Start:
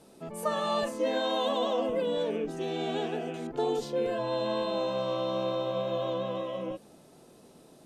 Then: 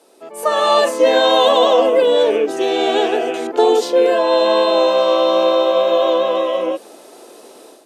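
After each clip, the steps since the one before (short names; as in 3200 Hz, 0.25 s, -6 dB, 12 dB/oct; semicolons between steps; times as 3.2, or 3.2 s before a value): HPF 330 Hz 24 dB/oct; AGC gain up to 11.5 dB; gain +5.5 dB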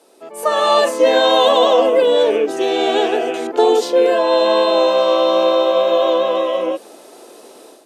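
nothing audible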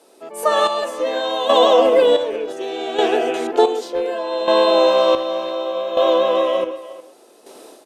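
chopper 0.67 Hz, depth 65%, duty 45%; speakerphone echo 0.36 s, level -16 dB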